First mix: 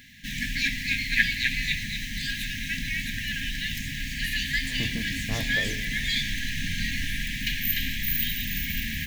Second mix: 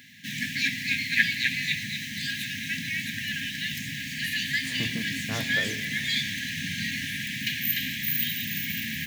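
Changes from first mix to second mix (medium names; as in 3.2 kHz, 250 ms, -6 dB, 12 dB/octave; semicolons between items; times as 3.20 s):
speech: remove Savitzky-Golay filter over 65 samples; master: add high-pass 110 Hz 24 dB/octave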